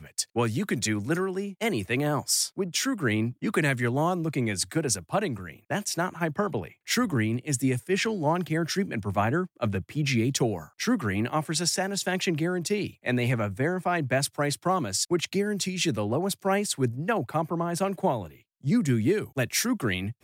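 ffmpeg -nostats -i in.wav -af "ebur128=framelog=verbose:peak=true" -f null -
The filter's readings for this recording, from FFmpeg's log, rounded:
Integrated loudness:
  I:         -27.3 LUFS
  Threshold: -37.3 LUFS
Loudness range:
  LRA:         1.5 LU
  Threshold: -47.3 LUFS
  LRA low:   -28.1 LUFS
  LRA high:  -26.6 LUFS
True peak:
  Peak:      -11.8 dBFS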